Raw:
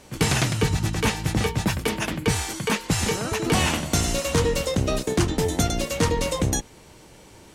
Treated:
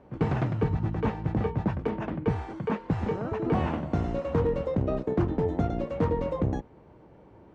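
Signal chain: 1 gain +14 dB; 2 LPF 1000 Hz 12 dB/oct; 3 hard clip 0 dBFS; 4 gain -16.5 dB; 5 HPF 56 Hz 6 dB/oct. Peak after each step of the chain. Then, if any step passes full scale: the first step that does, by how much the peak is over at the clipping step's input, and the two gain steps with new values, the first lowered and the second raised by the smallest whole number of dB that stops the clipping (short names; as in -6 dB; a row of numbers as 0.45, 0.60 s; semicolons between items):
+3.5, +3.0, 0.0, -16.5, -14.5 dBFS; step 1, 3.0 dB; step 1 +11 dB, step 4 -13.5 dB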